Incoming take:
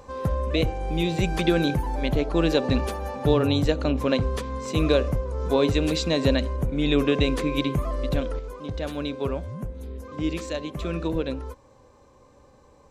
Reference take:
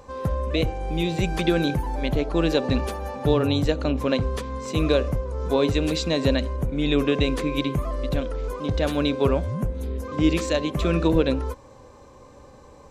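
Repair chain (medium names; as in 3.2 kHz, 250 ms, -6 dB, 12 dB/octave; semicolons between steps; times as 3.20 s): trim 0 dB, from 8.39 s +7 dB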